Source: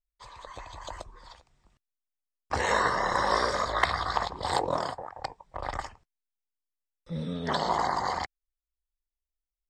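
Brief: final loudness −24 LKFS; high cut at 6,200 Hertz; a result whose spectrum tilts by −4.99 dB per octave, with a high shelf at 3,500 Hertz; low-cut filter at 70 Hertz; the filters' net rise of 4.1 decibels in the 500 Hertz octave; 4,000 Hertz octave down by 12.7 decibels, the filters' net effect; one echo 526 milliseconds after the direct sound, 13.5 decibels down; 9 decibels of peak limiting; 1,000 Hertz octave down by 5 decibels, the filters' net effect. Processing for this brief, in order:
high-pass filter 70 Hz
low-pass filter 6,200 Hz
parametric band 500 Hz +7.5 dB
parametric band 1,000 Hz −7.5 dB
high-shelf EQ 3,500 Hz −8.5 dB
parametric band 4,000 Hz −8.5 dB
brickwall limiter −19 dBFS
single-tap delay 526 ms −13.5 dB
level +8 dB

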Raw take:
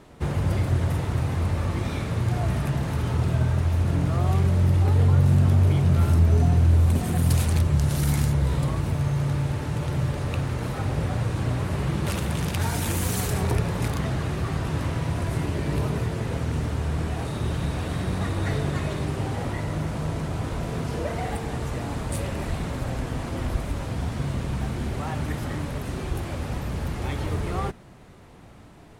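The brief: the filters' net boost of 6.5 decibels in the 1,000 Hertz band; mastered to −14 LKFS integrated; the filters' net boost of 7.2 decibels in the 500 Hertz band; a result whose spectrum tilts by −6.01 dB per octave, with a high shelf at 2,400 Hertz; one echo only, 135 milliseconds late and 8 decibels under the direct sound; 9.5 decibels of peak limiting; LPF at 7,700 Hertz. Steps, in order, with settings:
low-pass filter 7,700 Hz
parametric band 500 Hz +7.5 dB
parametric band 1,000 Hz +4.5 dB
high-shelf EQ 2,400 Hz +7 dB
brickwall limiter −16 dBFS
single-tap delay 135 ms −8 dB
level +11.5 dB

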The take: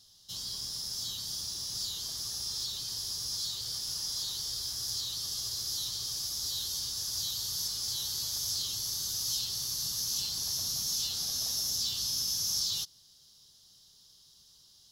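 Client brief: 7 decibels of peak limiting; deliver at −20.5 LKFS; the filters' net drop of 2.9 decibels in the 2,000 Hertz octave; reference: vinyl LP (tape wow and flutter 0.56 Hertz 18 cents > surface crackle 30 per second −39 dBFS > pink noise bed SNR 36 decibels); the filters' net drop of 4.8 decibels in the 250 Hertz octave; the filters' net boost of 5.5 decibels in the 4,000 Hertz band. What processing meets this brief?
parametric band 250 Hz −8 dB
parametric band 2,000 Hz −7.5 dB
parametric band 4,000 Hz +8.5 dB
brickwall limiter −21.5 dBFS
tape wow and flutter 0.56 Hz 18 cents
surface crackle 30 per second −39 dBFS
pink noise bed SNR 36 dB
level +8.5 dB

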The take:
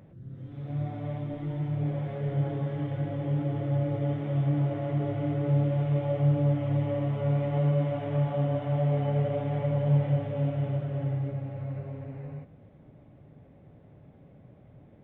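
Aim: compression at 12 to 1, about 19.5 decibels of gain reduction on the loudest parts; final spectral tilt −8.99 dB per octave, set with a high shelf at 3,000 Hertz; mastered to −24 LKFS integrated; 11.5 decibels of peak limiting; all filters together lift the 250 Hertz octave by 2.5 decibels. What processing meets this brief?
parametric band 250 Hz +4.5 dB
high-shelf EQ 3,000 Hz +5 dB
downward compressor 12 to 1, threshold −38 dBFS
level +25.5 dB
brickwall limiter −17 dBFS

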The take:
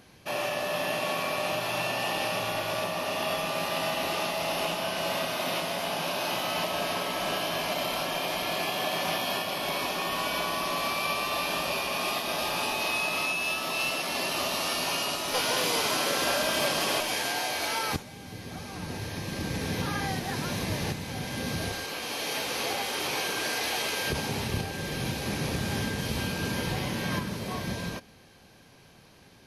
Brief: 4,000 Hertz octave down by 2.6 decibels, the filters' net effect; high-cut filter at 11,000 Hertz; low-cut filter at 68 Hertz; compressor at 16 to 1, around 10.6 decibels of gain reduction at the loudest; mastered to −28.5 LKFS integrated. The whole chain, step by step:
high-pass filter 68 Hz
low-pass filter 11,000 Hz
parametric band 4,000 Hz −3.5 dB
downward compressor 16 to 1, threshold −35 dBFS
level +9.5 dB

